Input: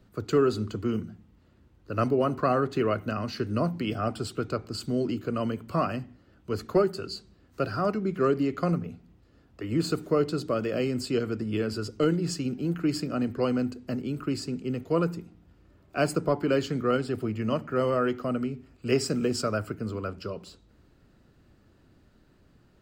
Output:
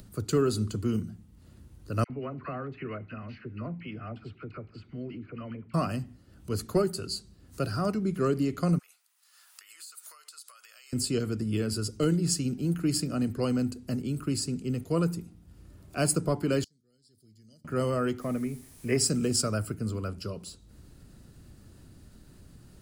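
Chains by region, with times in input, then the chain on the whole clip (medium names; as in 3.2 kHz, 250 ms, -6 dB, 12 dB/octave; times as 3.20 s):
2.04–5.74 s: four-pole ladder low-pass 2.6 kHz, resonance 55% + phase dispersion lows, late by 57 ms, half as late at 1 kHz
8.79–10.93 s: high-pass 1.1 kHz 24 dB/octave + treble shelf 6.6 kHz +7.5 dB + compression 5:1, threshold -53 dBFS
16.64–17.65 s: inverse Chebyshev high-pass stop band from 2.8 kHz + distance through air 390 m
18.20–18.96 s: resonant high shelf 2.8 kHz -10 dB, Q 3 + comb of notches 1.4 kHz + added noise pink -59 dBFS
whole clip: peaking EQ 10 kHz +10 dB 0.46 oct; upward compressor, threshold -45 dBFS; tone controls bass +8 dB, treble +11 dB; trim -4.5 dB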